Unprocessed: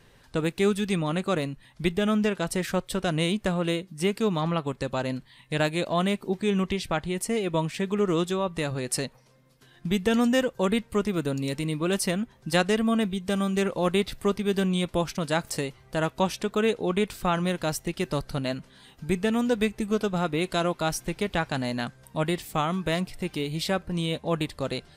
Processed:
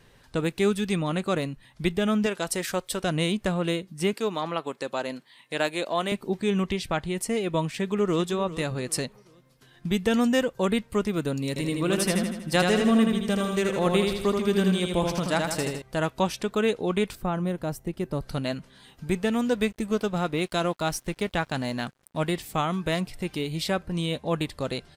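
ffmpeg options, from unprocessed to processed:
ffmpeg -i in.wav -filter_complex "[0:a]asettb=1/sr,asplit=3[link_01][link_02][link_03];[link_01]atrim=end=2.264[link_04];[link_02]atrim=start=2.26:end=3.04,asetpts=PTS-STARTPTS,afade=type=in:duration=0.004:curve=qsin,afade=type=out:start_time=0.776:duration=0.004:curve=qsin,bass=frequency=250:gain=-8,treble=frequency=4000:gain=5[link_05];[link_03]atrim=start=3.036[link_06];[link_04][link_05]acrossfade=duration=0.004:curve1=hsin:curve2=qsin[link_07];[link_07][link_06]acrossfade=duration=0.004:curve1=qsin:curve2=hsin,asettb=1/sr,asplit=3[link_08][link_09][link_10];[link_08]atrim=end=4.134[link_11];[link_09]atrim=start=4.13:end=6.12,asetpts=PTS-STARTPTS,afade=type=in:duration=0.004:curve=qsin,afade=type=out:start_time=1.986:duration=0.004:curve=qsin,highpass=310[link_12];[link_10]atrim=start=6.116[link_13];[link_11][link_12]acrossfade=duration=0.004:curve1=hsin:curve2=qsin[link_14];[link_14][link_13]acrossfade=duration=0.004:curve1=qsin:curve2=hsin,asplit=2[link_15][link_16];[link_16]afade=type=in:start_time=7.73:duration=0.01,afade=type=out:start_time=8.24:duration=0.01,aecho=0:1:390|780|1170:0.177828|0.0622398|0.0217839[link_17];[link_15][link_17]amix=inputs=2:normalize=0,asettb=1/sr,asplit=3[link_18][link_19][link_20];[link_18]atrim=end=11.484[link_21];[link_19]atrim=start=11.48:end=15.82,asetpts=PTS-STARTPTS,afade=type=in:duration=0.004:curve=qsin,afade=type=out:start_time=4.336:duration=0.004:curve=qsin,aecho=1:1:80|160|240|320|400|480|560:0.631|0.334|0.177|0.0939|0.0498|0.0264|0.014,atrim=end_sample=191394[link_22];[link_20]atrim=start=15.816[link_23];[link_21][link_22]acrossfade=duration=0.004:curve1=hsin:curve2=qsin[link_24];[link_24][link_23]acrossfade=duration=0.004:curve1=qsin:curve2=hsin,asettb=1/sr,asplit=3[link_25][link_26][link_27];[link_25]atrim=end=17.154[link_28];[link_26]atrim=start=17.15:end=18.22,asetpts=PTS-STARTPTS,afade=type=in:duration=0.004:curve=qsin,afade=type=out:start_time=1.066:duration=0.004:curve=qsin,equalizer=frequency=4400:width=0.3:gain=-13[link_29];[link_27]atrim=start=18.216[link_30];[link_28][link_29]acrossfade=duration=0.004:curve1=hsin:curve2=qsin[link_31];[link_31][link_30]acrossfade=duration=0.004:curve1=qsin:curve2=hsin,asettb=1/sr,asplit=3[link_32][link_33][link_34];[link_32]atrim=end=19.074[link_35];[link_33]atrim=start=19.07:end=22.32,asetpts=PTS-STARTPTS,afade=type=in:duration=0.004:curve=qsin,afade=type=out:start_time=3.246:duration=0.004:curve=qsin,aeval=exprs='sgn(val(0))*max(abs(val(0))-0.00335,0)':channel_layout=same[link_36];[link_34]atrim=start=22.316[link_37];[link_35][link_36]acrossfade=duration=0.004:curve1=hsin:curve2=qsin[link_38];[link_38][link_37]acrossfade=duration=0.004:curve1=qsin:curve2=hsin" out.wav

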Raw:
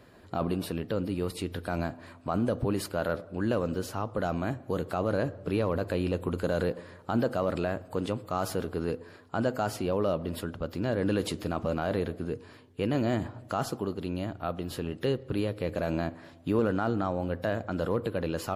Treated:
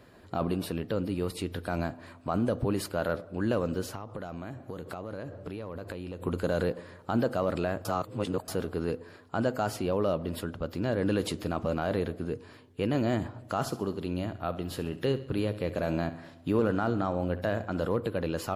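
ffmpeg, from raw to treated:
ffmpeg -i in.wav -filter_complex "[0:a]asettb=1/sr,asplit=3[link_01][link_02][link_03];[link_01]atrim=end=3.954[link_04];[link_02]atrim=start=3.95:end=6.22,asetpts=PTS-STARTPTS,afade=type=in:duration=0.004:curve=qsin,afade=type=out:start_time=2.266:duration=0.004:curve=qsin,acompressor=threshold=-34dB:ratio=6:attack=3.2:release=140:knee=1:detection=peak[link_05];[link_03]atrim=start=6.216[link_06];[link_04][link_05]acrossfade=duration=0.004:curve1=hsin:curve2=qsin[link_07];[link_07][link_06]acrossfade=duration=0.004:curve1=qsin:curve2=hsin,asettb=1/sr,asplit=3[link_08][link_09][link_10];[link_08]atrim=end=13.414[link_11];[link_09]atrim=start=13.41:end=17.85,asetpts=PTS-STARTPTS,afade=type=in:duration=0.004:curve=qsin,afade=type=out:start_time=4.436:duration=0.004:curve=qsin,aecho=1:1:67|134|201|268:0.178|0.0818|0.0376|0.0173,atrim=end_sample=195804[link_12];[link_10]atrim=start=17.846[link_13];[link_11][link_12]acrossfade=duration=0.004:curve1=hsin:curve2=qsin[link_14];[link_14][link_13]acrossfade=duration=0.004:curve1=qsin:curve2=hsin,asplit=3[link_15][link_16][link_17];[link_15]atrim=end=7.852[link_18];[link_16]atrim=start=7.848:end=8.482,asetpts=PTS-STARTPTS,areverse[link_19];[link_17]atrim=start=8.478[link_20];[link_18][link_19]acrossfade=duration=0.004:curve1=hsin:curve2=hsin[link_21];[link_21][link_20]acrossfade=duration=0.004:curve1=hsin:curve2=hsin" out.wav

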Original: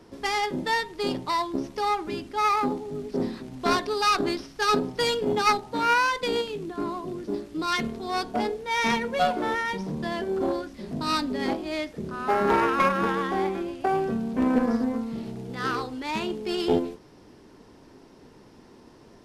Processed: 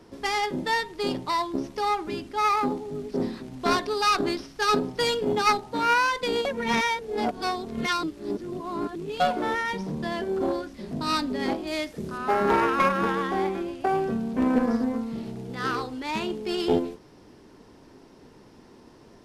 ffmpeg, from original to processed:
ffmpeg -i in.wav -filter_complex "[0:a]asettb=1/sr,asplit=3[link_01][link_02][link_03];[link_01]atrim=end=11.674[link_04];[link_02]atrim=start=11.67:end=12.18,asetpts=PTS-STARTPTS,afade=type=in:duration=0.004:curve=qsin,afade=type=out:start_time=0.506:duration=0.004:curve=qsin,highshelf=frequency=5400:gain=9[link_05];[link_03]atrim=start=12.176[link_06];[link_04][link_05]acrossfade=duration=0.004:curve1=hsin:curve2=qsin[link_07];[link_07][link_06]acrossfade=duration=0.004:curve1=qsin:curve2=hsin,asplit=3[link_08][link_09][link_10];[link_08]atrim=end=6.452[link_11];[link_09]atrim=start=6.448:end=9.202,asetpts=PTS-STARTPTS,areverse[link_12];[link_10]atrim=start=9.198[link_13];[link_11][link_12]acrossfade=duration=0.004:curve1=hsin:curve2=hsin[link_14];[link_14][link_13]acrossfade=duration=0.004:curve1=hsin:curve2=hsin" out.wav

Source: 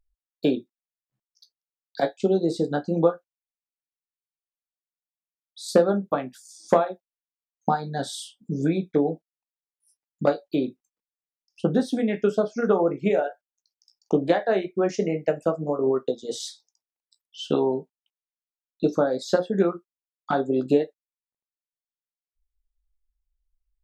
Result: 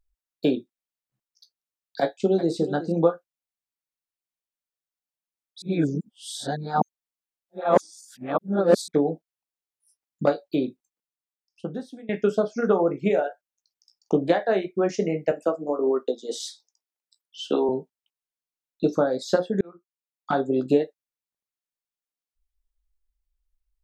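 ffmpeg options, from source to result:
ffmpeg -i in.wav -filter_complex "[0:a]asettb=1/sr,asplit=3[link_01][link_02][link_03];[link_01]atrim=end=2.014[link_04];[link_02]atrim=start=2.01:end=2.92,asetpts=PTS-STARTPTS,afade=type=in:duration=0.004:curve=qsin,afade=type=out:start_time=0.906:duration=0.004:curve=qsin,aecho=1:1:371:0.211,atrim=end_sample=40131[link_05];[link_03]atrim=start=2.916[link_06];[link_04][link_05]acrossfade=duration=0.004:curve1=hsin:curve2=qsin[link_07];[link_07][link_06]acrossfade=duration=0.004:curve1=qsin:curve2=hsin,asettb=1/sr,asplit=3[link_08][link_09][link_10];[link_08]atrim=end=15.314[link_11];[link_09]atrim=start=15.31:end=17.69,asetpts=PTS-STARTPTS,afade=type=in:duration=0.004:curve=qsin,afade=type=out:start_time=2.376:duration=0.004:curve=qsin,highpass=frequency=230:width=0.5412,highpass=frequency=230:width=1.3066[link_12];[link_10]atrim=start=17.686[link_13];[link_11][link_12]acrossfade=duration=0.004:curve1=hsin:curve2=qsin[link_14];[link_14][link_13]acrossfade=duration=0.004:curve1=qsin:curve2=hsin,asplit=5[link_15][link_16][link_17][link_18][link_19];[link_15]atrim=end=5.622[link_20];[link_16]atrim=start=5.618:end=8.882,asetpts=PTS-STARTPTS,areverse[link_21];[link_17]atrim=start=8.878:end=12.09,asetpts=PTS-STARTPTS,afade=type=out:start_time=1.772:duration=1.44:silence=0.0707946[link_22];[link_18]atrim=start=12.09:end=19.61,asetpts=PTS-STARTPTS,afade=type=in:duration=0.004:curve=hsin:silence=0.0707946,afade=type=out:start_time=7.516:duration=0.004:curve=hsin[link_23];[link_19]atrim=start=19.61,asetpts=PTS-STARTPTS,afade=type=in:duration=0.7[link_24];[link_20][link_21]acrossfade=duration=0.004:curve1=hsin:curve2=hsin[link_25];[link_22][link_23][link_24]concat=n=3:v=0:a=1[link_26];[link_25][link_26]acrossfade=duration=0.004:curve1=hsin:curve2=hsin" out.wav

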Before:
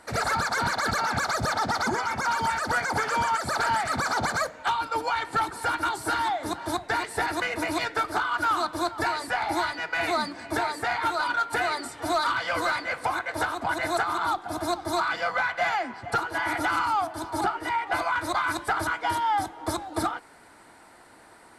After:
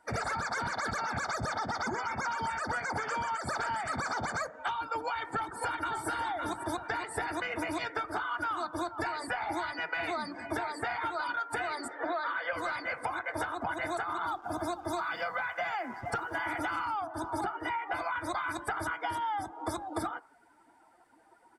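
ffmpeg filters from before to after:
ffmpeg -i in.wav -filter_complex "[0:a]asplit=2[link_01][link_02];[link_02]afade=type=in:start_time=5.05:duration=0.01,afade=type=out:start_time=6.07:duration=0.01,aecho=0:1:560|1120|1680|2240|2800:0.473151|0.189261|0.0757042|0.0302817|0.0121127[link_03];[link_01][link_03]amix=inputs=2:normalize=0,asettb=1/sr,asplit=3[link_04][link_05][link_06];[link_04]atrim=end=11.884[link_07];[link_05]atrim=start=11.88:end=12.53,asetpts=PTS-STARTPTS,afade=type=in:duration=0.004:curve=qsin,afade=type=out:start_time=0.646:duration=0.004:curve=qsin,highpass=250,equalizer=frequency=530:width_type=q:width=4:gain=8,equalizer=frequency=1700:width_type=q:width=4:gain=7,equalizer=frequency=2900:width_type=q:width=4:gain=-4,lowpass=frequency=4100:width=0.5412,lowpass=frequency=4100:width=1.3066[link_08];[link_06]atrim=start=12.526[link_09];[link_07][link_08]acrossfade=duration=0.004:curve1=hsin:curve2=qsin[link_10];[link_10][link_09]acrossfade=duration=0.004:curve1=qsin:curve2=hsin,asettb=1/sr,asplit=3[link_11][link_12][link_13];[link_11]atrim=end=14.254[link_14];[link_12]atrim=start=14.25:end=16.84,asetpts=PTS-STARTPTS,afade=type=in:duration=0.004:curve=qsin,afade=type=out:start_time=2.586:duration=0.004:curve=qsin,acrusher=bits=6:mix=0:aa=0.5[link_15];[link_13]atrim=start=16.836[link_16];[link_14][link_15]acrossfade=duration=0.004:curve1=hsin:curve2=qsin[link_17];[link_17][link_16]acrossfade=duration=0.004:curve1=qsin:curve2=hsin,bandreject=frequency=4100:width=8.7,afftdn=noise_reduction=17:noise_floor=-43,acompressor=threshold=-31dB:ratio=6" out.wav

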